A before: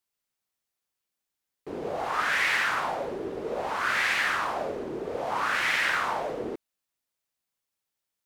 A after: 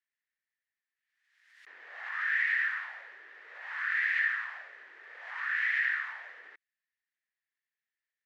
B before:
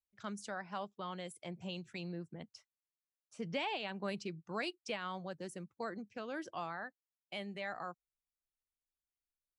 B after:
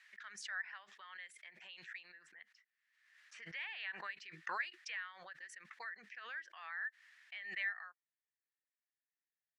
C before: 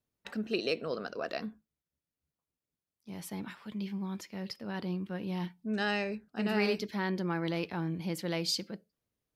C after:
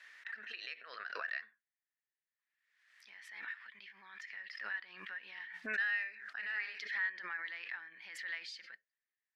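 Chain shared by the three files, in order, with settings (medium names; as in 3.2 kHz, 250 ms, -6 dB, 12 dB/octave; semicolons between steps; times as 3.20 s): compression, threshold -30 dBFS; ladder band-pass 1.9 kHz, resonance 80%; swell ahead of each attack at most 55 dB/s; trim +5 dB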